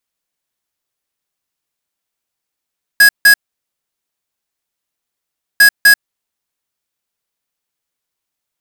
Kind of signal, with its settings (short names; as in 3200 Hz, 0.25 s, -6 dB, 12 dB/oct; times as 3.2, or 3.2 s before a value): beep pattern square 1660 Hz, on 0.09 s, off 0.16 s, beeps 2, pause 2.26 s, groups 2, -5.5 dBFS